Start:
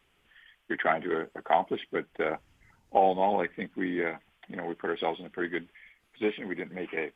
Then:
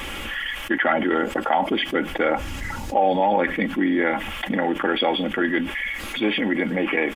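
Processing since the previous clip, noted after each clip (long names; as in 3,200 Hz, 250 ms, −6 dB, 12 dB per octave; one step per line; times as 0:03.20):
comb filter 3.6 ms, depth 56%
envelope flattener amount 70%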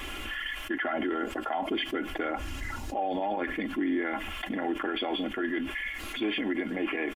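comb filter 2.9 ms, depth 52%
brickwall limiter −13.5 dBFS, peak gain reduction 7.5 dB
level −7.5 dB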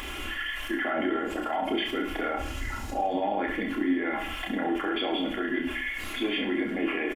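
upward compression, threshold −39 dBFS
on a send: reverse bouncing-ball delay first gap 30 ms, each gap 1.2×, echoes 5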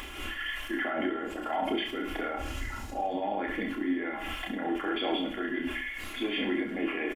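amplitude modulation by smooth noise, depth 55%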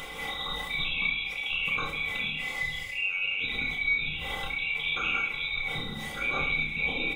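neighbouring bands swapped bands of 2,000 Hz
rectangular room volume 43 cubic metres, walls mixed, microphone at 0.45 metres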